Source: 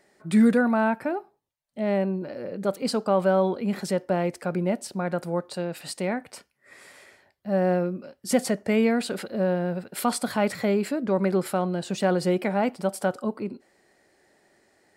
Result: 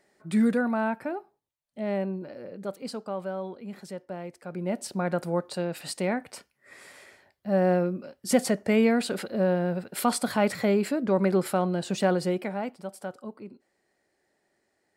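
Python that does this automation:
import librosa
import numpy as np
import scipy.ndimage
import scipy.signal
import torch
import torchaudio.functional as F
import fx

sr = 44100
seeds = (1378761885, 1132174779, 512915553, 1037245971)

y = fx.gain(x, sr, db=fx.line((2.11, -4.5), (3.35, -12.5), (4.41, -12.5), (4.84, 0.0), (12.02, 0.0), (12.84, -11.0)))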